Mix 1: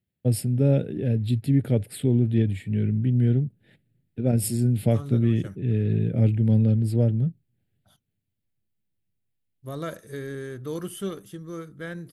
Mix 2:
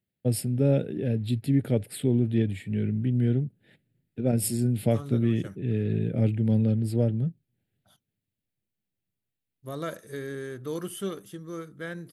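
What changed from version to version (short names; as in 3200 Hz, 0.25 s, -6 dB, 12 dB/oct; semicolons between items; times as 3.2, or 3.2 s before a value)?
master: add low shelf 100 Hz -10.5 dB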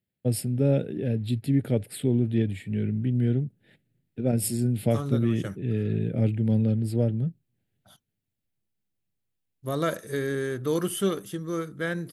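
second voice +7.0 dB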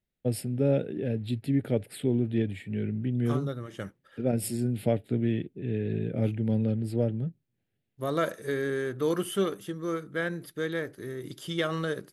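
second voice: entry -1.65 s; master: add tone controls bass -5 dB, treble -6 dB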